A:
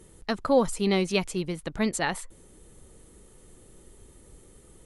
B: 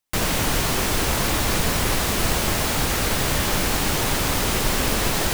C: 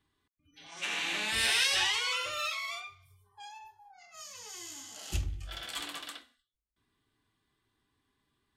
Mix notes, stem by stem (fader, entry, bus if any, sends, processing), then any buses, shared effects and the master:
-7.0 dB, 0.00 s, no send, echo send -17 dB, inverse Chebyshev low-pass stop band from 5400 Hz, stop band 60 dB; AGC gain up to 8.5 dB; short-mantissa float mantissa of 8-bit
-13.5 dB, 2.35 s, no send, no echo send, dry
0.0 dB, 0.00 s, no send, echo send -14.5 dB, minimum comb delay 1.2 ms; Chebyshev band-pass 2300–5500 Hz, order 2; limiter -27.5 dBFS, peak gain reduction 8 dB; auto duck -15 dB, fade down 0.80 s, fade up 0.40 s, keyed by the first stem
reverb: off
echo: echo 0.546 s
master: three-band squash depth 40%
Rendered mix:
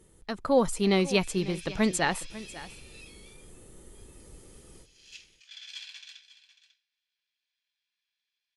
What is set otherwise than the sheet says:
stem A: missing inverse Chebyshev low-pass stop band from 5400 Hz, stop band 60 dB; stem B: muted; master: missing three-band squash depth 40%

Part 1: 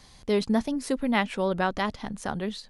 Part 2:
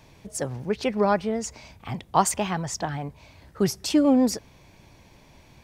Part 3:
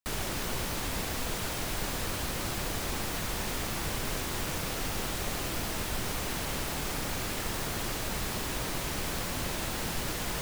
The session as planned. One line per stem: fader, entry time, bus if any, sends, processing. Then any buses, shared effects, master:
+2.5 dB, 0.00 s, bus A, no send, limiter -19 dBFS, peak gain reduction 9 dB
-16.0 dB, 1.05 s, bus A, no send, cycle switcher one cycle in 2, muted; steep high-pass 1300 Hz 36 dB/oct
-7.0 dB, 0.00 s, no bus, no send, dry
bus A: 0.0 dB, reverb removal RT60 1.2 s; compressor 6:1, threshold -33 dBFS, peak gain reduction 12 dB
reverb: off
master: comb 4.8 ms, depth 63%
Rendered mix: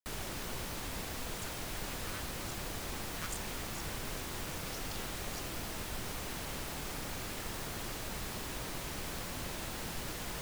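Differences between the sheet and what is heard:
stem 1: muted; master: missing comb 4.8 ms, depth 63%

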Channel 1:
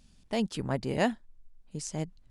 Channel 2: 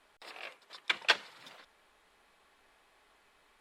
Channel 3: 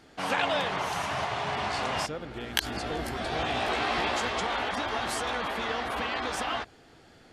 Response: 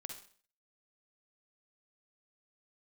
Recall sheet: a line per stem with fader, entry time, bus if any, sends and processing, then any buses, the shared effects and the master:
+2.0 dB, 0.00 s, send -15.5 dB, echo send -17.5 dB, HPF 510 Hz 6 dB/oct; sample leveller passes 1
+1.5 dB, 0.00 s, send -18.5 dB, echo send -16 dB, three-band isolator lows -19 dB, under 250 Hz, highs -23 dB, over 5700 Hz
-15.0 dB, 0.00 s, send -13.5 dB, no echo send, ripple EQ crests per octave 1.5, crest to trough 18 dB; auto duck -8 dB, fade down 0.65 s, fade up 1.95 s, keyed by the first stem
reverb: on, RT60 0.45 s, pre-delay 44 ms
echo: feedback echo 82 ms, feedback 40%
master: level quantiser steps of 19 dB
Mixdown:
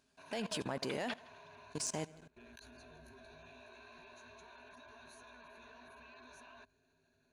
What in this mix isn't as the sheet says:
stem 1: send off; stem 2 +1.5 dB -> -8.0 dB; reverb return -7.5 dB

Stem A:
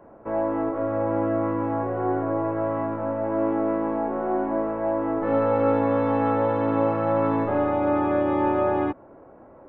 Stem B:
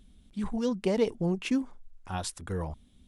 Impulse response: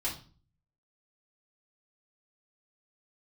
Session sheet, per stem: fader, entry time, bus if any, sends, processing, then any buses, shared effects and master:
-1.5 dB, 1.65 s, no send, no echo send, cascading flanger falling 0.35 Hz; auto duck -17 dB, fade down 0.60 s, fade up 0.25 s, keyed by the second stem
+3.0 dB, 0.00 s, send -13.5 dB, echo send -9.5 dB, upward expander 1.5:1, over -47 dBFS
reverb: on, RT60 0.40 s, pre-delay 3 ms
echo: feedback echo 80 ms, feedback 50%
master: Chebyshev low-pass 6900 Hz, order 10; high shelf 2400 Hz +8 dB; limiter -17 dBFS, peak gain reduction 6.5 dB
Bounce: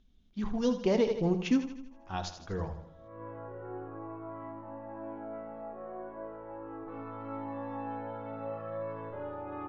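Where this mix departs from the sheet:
stem A -1.5 dB -> -11.5 dB; master: missing high shelf 2400 Hz +8 dB

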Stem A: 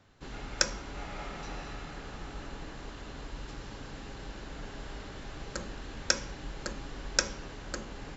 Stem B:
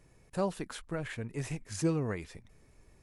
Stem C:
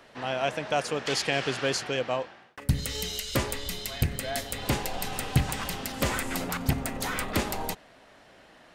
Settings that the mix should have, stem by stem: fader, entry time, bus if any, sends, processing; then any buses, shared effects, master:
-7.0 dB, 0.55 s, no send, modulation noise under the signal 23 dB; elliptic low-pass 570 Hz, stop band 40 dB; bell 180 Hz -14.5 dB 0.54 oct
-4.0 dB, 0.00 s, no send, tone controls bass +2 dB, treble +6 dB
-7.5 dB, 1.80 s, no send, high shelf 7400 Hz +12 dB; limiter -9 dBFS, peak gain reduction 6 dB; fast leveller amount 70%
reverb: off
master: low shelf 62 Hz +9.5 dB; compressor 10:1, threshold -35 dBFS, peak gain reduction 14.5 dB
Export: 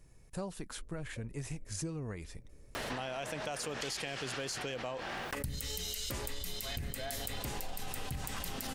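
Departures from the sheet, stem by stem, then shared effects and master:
stem A -7.0 dB -> -17.5 dB; stem C: entry 1.80 s -> 2.75 s

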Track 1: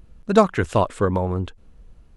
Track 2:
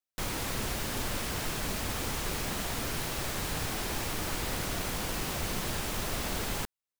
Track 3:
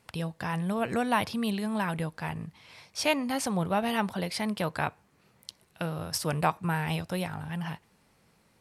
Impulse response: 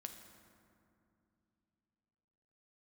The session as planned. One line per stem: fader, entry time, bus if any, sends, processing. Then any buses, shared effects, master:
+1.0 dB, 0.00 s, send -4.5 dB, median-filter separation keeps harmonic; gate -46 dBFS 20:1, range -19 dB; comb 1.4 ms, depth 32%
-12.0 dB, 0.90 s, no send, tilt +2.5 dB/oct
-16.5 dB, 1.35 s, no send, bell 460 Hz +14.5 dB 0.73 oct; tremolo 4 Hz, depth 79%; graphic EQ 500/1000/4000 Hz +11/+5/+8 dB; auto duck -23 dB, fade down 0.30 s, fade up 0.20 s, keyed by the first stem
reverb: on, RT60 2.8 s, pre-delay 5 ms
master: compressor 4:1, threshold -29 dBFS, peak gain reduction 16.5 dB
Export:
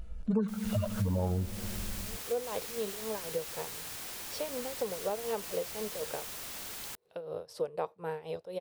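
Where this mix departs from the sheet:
stem 1: missing gate -46 dBFS 20:1, range -19 dB; stem 2: entry 0.90 s -> 0.30 s

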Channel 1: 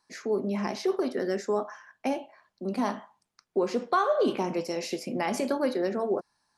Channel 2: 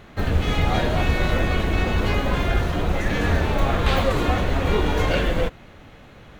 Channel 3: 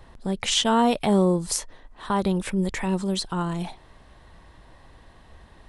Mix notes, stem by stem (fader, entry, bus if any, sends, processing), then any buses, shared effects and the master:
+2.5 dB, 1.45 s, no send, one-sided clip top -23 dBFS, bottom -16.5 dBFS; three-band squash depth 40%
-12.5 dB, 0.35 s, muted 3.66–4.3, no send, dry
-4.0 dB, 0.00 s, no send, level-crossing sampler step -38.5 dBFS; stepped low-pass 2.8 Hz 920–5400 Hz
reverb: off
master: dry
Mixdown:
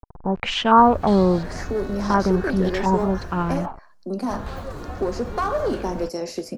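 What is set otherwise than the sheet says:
stem 2: entry 0.35 s -> 0.60 s; stem 3 -4.0 dB -> +2.5 dB; master: extra band shelf 2700 Hz -8.5 dB 1.1 oct

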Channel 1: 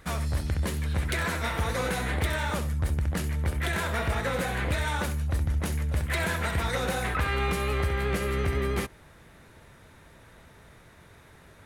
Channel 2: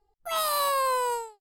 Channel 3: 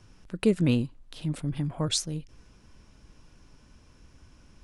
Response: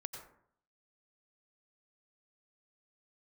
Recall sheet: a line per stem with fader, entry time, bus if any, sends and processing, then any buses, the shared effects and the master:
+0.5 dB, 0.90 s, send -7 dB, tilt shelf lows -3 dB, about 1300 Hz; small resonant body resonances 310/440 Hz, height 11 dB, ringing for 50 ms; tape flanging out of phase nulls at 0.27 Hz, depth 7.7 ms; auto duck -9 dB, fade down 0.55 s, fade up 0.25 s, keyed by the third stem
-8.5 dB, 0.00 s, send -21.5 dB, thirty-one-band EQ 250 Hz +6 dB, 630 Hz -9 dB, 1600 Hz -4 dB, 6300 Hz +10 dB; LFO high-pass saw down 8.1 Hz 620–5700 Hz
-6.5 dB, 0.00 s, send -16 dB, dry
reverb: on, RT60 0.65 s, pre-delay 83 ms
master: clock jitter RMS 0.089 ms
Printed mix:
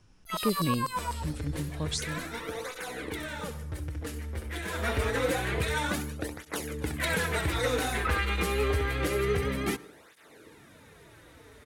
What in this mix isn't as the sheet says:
stem 1: send -7 dB -> -13 dB; stem 2: missing thirty-one-band EQ 250 Hz +6 dB, 630 Hz -9 dB, 1600 Hz -4 dB, 6300 Hz +10 dB; master: missing clock jitter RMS 0.089 ms

